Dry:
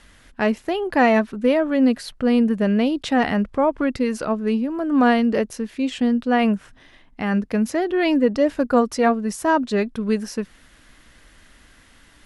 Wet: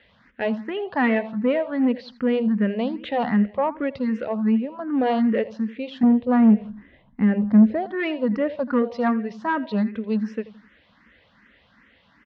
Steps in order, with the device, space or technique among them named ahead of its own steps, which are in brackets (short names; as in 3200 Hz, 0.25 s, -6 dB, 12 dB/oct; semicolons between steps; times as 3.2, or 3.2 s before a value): LPF 8400 Hz; 6.03–7.86 tilt -3.5 dB/oct; feedback echo 83 ms, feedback 36%, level -16 dB; barber-pole phaser into a guitar amplifier (endless phaser +2.6 Hz; soft clip -12.5 dBFS, distortion -15 dB; speaker cabinet 88–3900 Hz, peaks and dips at 210 Hz +8 dB, 340 Hz -4 dB, 510 Hz +5 dB, 960 Hz +3 dB, 1900 Hz +4 dB); gain -2.5 dB